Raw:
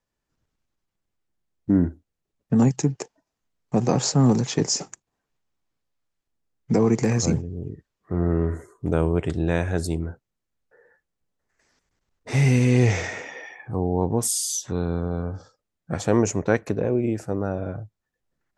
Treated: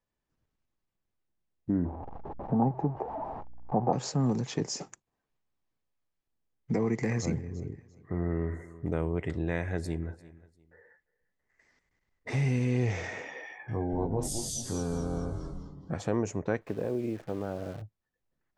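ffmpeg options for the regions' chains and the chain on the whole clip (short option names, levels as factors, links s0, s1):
-filter_complex "[0:a]asettb=1/sr,asplit=3[s0][s1][s2];[s0]atrim=end=1.854[s3];[s1]atrim=start=1.85:end=3.93,asetpts=PTS-STARTPTS,afade=t=in:d=0.004:c=qsin,afade=t=out:st=2.076:d=0.004:c=qsin,aeval=exprs='val(0)+0.5*0.0316*sgn(val(0))':c=same,lowpass=f=830:t=q:w=5.2,aeval=exprs='val(0)+0.002*(sin(2*PI*60*n/s)+sin(2*PI*2*60*n/s)/2+sin(2*PI*3*60*n/s)/3+sin(2*PI*4*60*n/s)/4+sin(2*PI*5*60*n/s)/5)':c=same[s4];[s2]atrim=start=3.926[s5];[s3][s4]acrossfade=d=0.004:c1=hsin:c2=qsin[s6];[s6][s5]acrossfade=d=0.004:c1=qsin:c2=hsin,asettb=1/sr,asplit=3[s7][s8][s9];[s7]atrim=end=6.744[s10];[s8]atrim=start=6.74:end=12.3,asetpts=PTS-STARTPTS,afade=t=in:d=0.004:c=qsin,afade=t=out:st=5.556:d=0.004:c=qsin,equalizer=f=2000:w=6.2:g=13,aecho=1:1:346|692:0.0708|0.0177,atrim=end_sample=245196[s11];[s9]atrim=start=12.296[s12];[s10][s11]acrossfade=d=0.004:c1=hsin:c2=qsin[s13];[s13][s12]acrossfade=d=0.004:c1=qsin:c2=hsin,asettb=1/sr,asplit=3[s14][s15][s16];[s14]atrim=end=13.474[s17];[s15]atrim=start=13.47:end=15.93,asetpts=PTS-STARTPTS,afade=t=in:d=0.004:c=qsin,afade=t=out:st=2.456:d=0.004:c=qsin,asplit=2[s18][s19];[s19]adelay=19,volume=0.596[s20];[s18][s20]amix=inputs=2:normalize=0,atrim=end_sample=108486,asplit=6[s21][s22][s23][s24][s25][s26];[s22]adelay=212,afreqshift=-120,volume=0.447[s27];[s23]adelay=424,afreqshift=-240,volume=0.188[s28];[s24]adelay=636,afreqshift=-360,volume=0.0785[s29];[s25]adelay=848,afreqshift=-480,volume=0.0331[s30];[s26]adelay=1060,afreqshift=-600,volume=0.014[s31];[s21][s27][s28][s29][s30][s31]amix=inputs=6:normalize=0,atrim=end_sample=108486[s32];[s16]atrim=start=15.926[s33];[s17][s32]acrossfade=d=0.004:c1=hsin:c2=qsin[s34];[s34][s33]acrossfade=d=0.004:c1=qsin:c2=hsin,asettb=1/sr,asplit=3[s35][s36][s37];[s35]atrim=end=16.614[s38];[s36]atrim=start=16.61:end=17.82,asetpts=PTS-STARTPTS,afade=t=in:d=0.004:c=qsin,afade=t=out:st=1.206:d=0.004:c=qsin,lowpass=2800,lowshelf=f=160:g=-6.5,acrusher=bits=8:dc=4:mix=0:aa=0.000001[s39];[s37]atrim=start=17.816[s40];[s38][s39]acrossfade=d=0.004:c1=hsin:c2=qsin[s41];[s41][s40]acrossfade=d=0.004:c1=qsin:c2=hsin,highshelf=f=5500:g=-9.5,bandreject=f=1400:w=23,acompressor=threshold=0.0282:ratio=1.5,volume=0.668"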